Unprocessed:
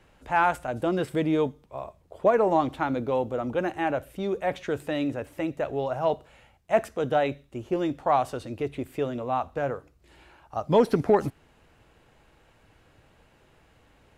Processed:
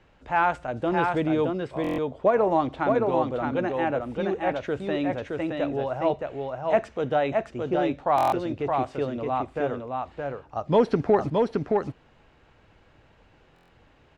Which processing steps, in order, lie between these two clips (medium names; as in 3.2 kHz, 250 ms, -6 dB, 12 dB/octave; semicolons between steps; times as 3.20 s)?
Bessel low-pass 4.8 kHz, order 4; on a send: delay 619 ms -3.5 dB; on the sum: buffer glitch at 1.82/8.16/13.54 s, samples 1024, times 6